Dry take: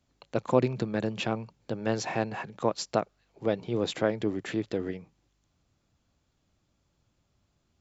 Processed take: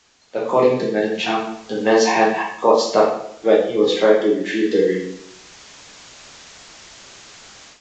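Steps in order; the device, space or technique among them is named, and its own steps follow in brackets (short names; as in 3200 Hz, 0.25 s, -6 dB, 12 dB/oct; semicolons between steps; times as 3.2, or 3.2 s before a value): spectral noise reduction 17 dB; filmed off a television (BPF 300–6800 Hz; bell 460 Hz +4.5 dB 0.49 oct; reverb RT60 0.70 s, pre-delay 5 ms, DRR -5 dB; white noise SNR 26 dB; AGC gain up to 16 dB; gain -1 dB; AAC 48 kbps 16000 Hz)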